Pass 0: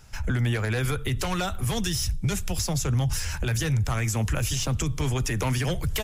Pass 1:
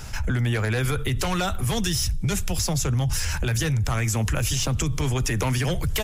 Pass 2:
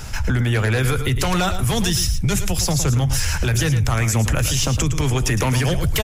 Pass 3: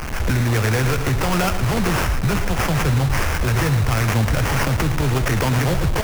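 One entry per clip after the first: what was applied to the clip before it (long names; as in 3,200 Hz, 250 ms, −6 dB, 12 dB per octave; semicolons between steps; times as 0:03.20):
envelope flattener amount 50%
single-tap delay 111 ms −10 dB; level +4.5 dB
linear delta modulator 64 kbit/s, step −21 dBFS; sample-rate reduction 3,900 Hz, jitter 20%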